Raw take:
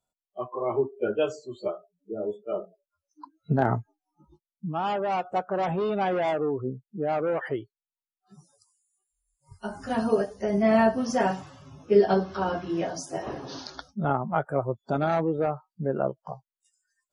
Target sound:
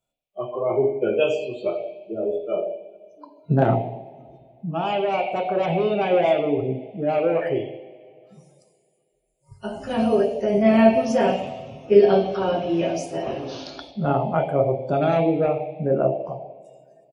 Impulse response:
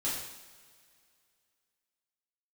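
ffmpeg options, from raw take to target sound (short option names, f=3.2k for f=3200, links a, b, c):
-filter_complex "[0:a]asplit=2[a][b];[b]firequalizer=gain_entry='entry(190,0);entry(660,9);entry(1400,-29);entry(2300,13);entry(4200,1);entry(7100,-27)':delay=0.05:min_phase=1[c];[1:a]atrim=start_sample=2205[d];[c][d]afir=irnorm=-1:irlink=0,volume=-6.5dB[e];[a][e]amix=inputs=2:normalize=0"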